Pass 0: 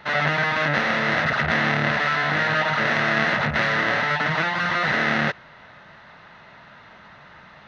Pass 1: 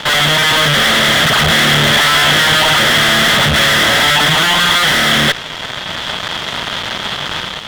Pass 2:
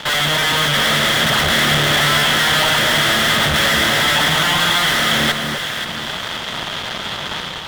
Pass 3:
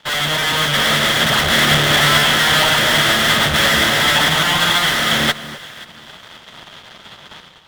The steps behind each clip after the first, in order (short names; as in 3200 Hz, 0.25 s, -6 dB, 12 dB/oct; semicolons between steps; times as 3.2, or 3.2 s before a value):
fuzz box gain 39 dB, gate -46 dBFS; bell 3300 Hz +14.5 dB 0.28 oct; AGC gain up to 6.5 dB
high shelf 11000 Hz +4.5 dB; on a send: echo with dull and thin repeats by turns 0.264 s, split 1300 Hz, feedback 63%, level -4 dB; on the sum: gain -5.5 dB
upward expander 2.5:1, over -29 dBFS; gain +3 dB